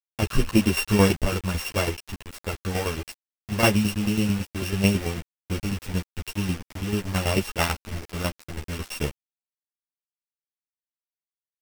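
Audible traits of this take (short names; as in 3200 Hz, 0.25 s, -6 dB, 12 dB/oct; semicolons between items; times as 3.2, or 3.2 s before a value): a buzz of ramps at a fixed pitch in blocks of 16 samples; tremolo saw down 9.1 Hz, depth 75%; a quantiser's noise floor 6-bit, dither none; a shimmering, thickened sound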